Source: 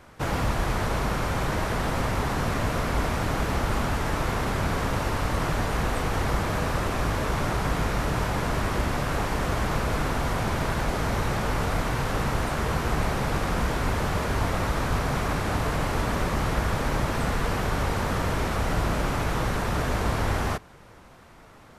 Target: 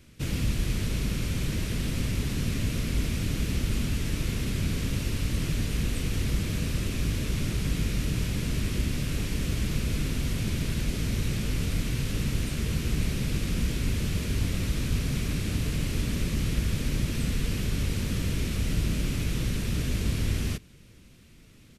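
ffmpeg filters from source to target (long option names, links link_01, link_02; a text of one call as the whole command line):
ffmpeg -i in.wav -af "firequalizer=gain_entry='entry(220,0);entry(790,-23);entry(2500,-1);entry(9000,1)':delay=0.05:min_phase=1" out.wav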